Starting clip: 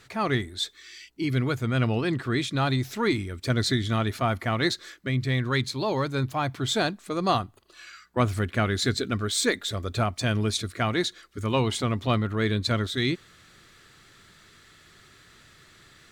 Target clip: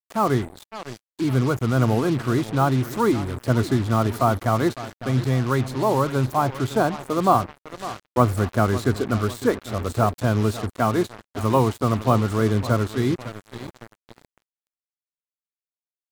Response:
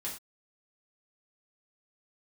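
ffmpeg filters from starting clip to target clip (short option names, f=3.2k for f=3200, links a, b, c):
-filter_complex "[0:a]highshelf=f=1.6k:t=q:w=1.5:g=-13,aecho=1:1:555|1110|1665|2220:0.178|0.08|0.036|0.0162,acrossover=split=300|2600[a][b][c];[c]acompressor=threshold=-56dB:ratio=6[d];[a][b][d]amix=inputs=3:normalize=0,aemphasis=mode=production:type=75kf,bandreject=f=1.8k:w=20,acrusher=bits=5:mix=0:aa=0.5,volume=4.5dB"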